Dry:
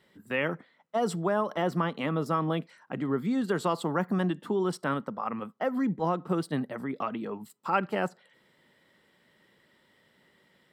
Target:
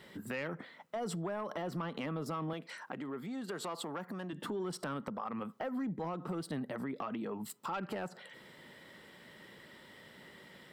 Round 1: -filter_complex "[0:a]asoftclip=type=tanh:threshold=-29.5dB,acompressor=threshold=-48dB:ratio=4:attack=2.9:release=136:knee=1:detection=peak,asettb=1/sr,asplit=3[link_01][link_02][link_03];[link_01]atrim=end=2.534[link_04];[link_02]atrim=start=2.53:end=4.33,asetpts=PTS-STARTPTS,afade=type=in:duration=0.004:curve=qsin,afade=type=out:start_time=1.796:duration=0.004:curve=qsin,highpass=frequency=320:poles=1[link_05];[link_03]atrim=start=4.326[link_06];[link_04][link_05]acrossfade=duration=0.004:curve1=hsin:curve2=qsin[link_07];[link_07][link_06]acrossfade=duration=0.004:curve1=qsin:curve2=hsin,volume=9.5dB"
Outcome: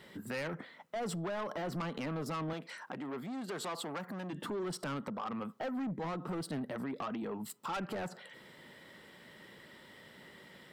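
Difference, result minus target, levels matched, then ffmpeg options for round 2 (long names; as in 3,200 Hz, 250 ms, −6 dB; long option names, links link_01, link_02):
soft clipping: distortion +10 dB
-filter_complex "[0:a]asoftclip=type=tanh:threshold=-19.5dB,acompressor=threshold=-48dB:ratio=4:attack=2.9:release=136:knee=1:detection=peak,asettb=1/sr,asplit=3[link_01][link_02][link_03];[link_01]atrim=end=2.534[link_04];[link_02]atrim=start=2.53:end=4.33,asetpts=PTS-STARTPTS,afade=type=in:duration=0.004:curve=qsin,afade=type=out:start_time=1.796:duration=0.004:curve=qsin,highpass=frequency=320:poles=1[link_05];[link_03]atrim=start=4.326[link_06];[link_04][link_05]acrossfade=duration=0.004:curve1=hsin:curve2=qsin[link_07];[link_07][link_06]acrossfade=duration=0.004:curve1=qsin:curve2=hsin,volume=9.5dB"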